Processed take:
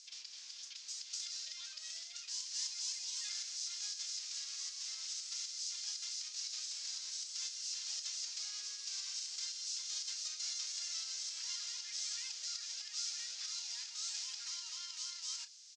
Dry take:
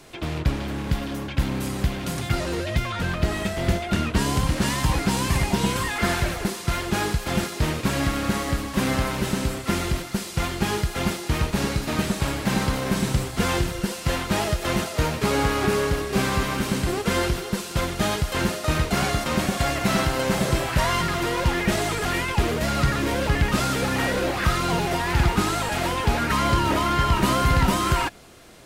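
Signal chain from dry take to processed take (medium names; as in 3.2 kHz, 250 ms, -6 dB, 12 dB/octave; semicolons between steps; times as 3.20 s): compression, threshold -25 dBFS, peak gain reduction 9.5 dB; time stretch by phase-locked vocoder 0.55×; Butterworth band-pass 6 kHz, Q 2.5; distance through air 99 m; doubling 32 ms -12 dB; trim +11 dB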